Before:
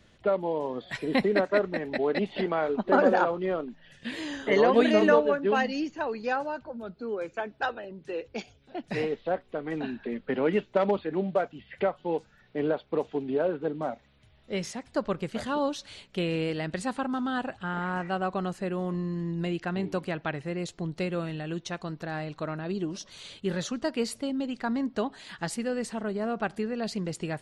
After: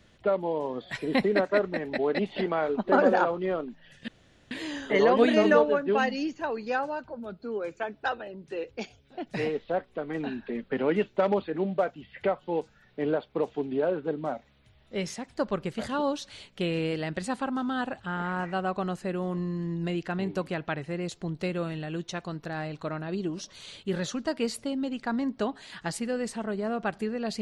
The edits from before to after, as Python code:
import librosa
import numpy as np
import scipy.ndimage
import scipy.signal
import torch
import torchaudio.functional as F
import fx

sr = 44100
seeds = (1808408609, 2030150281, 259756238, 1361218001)

y = fx.edit(x, sr, fx.insert_room_tone(at_s=4.08, length_s=0.43), tone=tone)